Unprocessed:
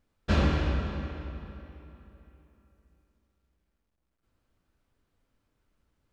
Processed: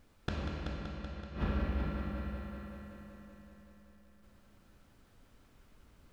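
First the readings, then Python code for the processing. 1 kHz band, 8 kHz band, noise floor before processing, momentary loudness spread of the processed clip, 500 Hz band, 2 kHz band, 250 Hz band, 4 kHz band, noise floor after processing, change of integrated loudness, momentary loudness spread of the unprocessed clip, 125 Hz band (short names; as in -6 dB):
-6.5 dB, n/a, -79 dBFS, 19 LU, -6.5 dB, -7.0 dB, -5.0 dB, -8.5 dB, -64 dBFS, -10.0 dB, 21 LU, -7.0 dB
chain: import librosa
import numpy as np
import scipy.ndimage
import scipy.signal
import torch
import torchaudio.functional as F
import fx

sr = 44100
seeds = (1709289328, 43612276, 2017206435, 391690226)

y = fx.gate_flip(x, sr, shuts_db=-29.0, range_db=-25)
y = fx.echo_heads(y, sr, ms=190, heads='first and second', feedback_pct=64, wet_db=-9)
y = F.gain(torch.from_numpy(y), 10.5).numpy()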